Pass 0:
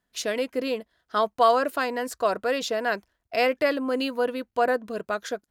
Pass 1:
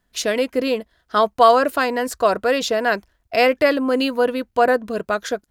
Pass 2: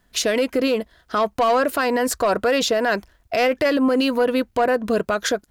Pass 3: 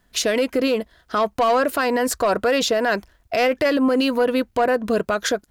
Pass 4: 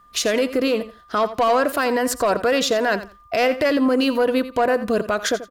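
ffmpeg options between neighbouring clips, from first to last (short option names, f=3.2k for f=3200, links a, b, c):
-af "lowshelf=f=77:g=11.5,volume=6.5dB"
-af "acontrast=86,alimiter=limit=-12dB:level=0:latency=1:release=104"
-af anull
-af "aeval=exprs='val(0)+0.00316*sin(2*PI*1200*n/s)':c=same,aecho=1:1:85|170:0.2|0.0359"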